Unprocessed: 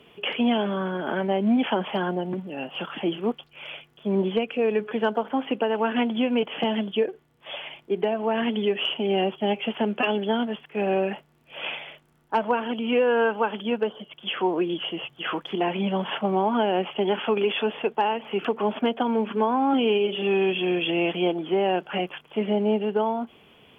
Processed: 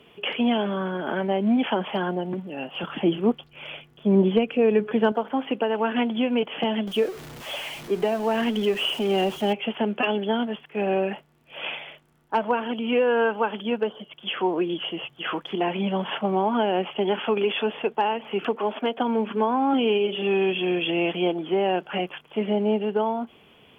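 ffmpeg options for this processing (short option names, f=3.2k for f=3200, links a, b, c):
-filter_complex "[0:a]asettb=1/sr,asplit=3[a][b][c];[a]atrim=end=2.834[d];[b]atrim=start=2.83:end=5.12,asetpts=PTS-STARTPTS,afade=t=in:d=0.004:c=qsin,afade=t=out:st=2.286:d=0.004:c=qsin,lowshelf=f=370:g=8[e];[c]atrim=start=5.116[f];[d][e]acrossfade=d=0.004:c1=hsin:c2=qsin[g];[g][f]acrossfade=d=0.004:c1=qsin:c2=hsin,asettb=1/sr,asplit=3[h][i][j];[h]atrim=end=6.874[k];[i]atrim=start=6.87:end=9.53,asetpts=PTS-STARTPTS,afade=t=in:d=0.004:c=qsin,afade=t=out:st=2.656:d=0.004:c=qsin,aeval=exprs='val(0)+0.5*0.0178*sgn(val(0))':c=same[l];[j]atrim=start=9.526[m];[k][l]acrossfade=d=0.004:c1=hsin:c2=qsin[n];[n][m]acrossfade=d=0.004:c1=qsin:c2=hsin,asettb=1/sr,asplit=3[o][p][q];[o]atrim=end=18.554[r];[p]atrim=start=18.55:end=18.98,asetpts=PTS-STARTPTS,afade=t=in:d=0.004:c=qsin,afade=t=out:st=0.426:d=0.004:c=qsin,highpass=290[s];[q]atrim=start=18.976[t];[r][s]acrossfade=d=0.004:c1=hsin:c2=qsin[u];[u][t]acrossfade=d=0.004:c1=qsin:c2=hsin"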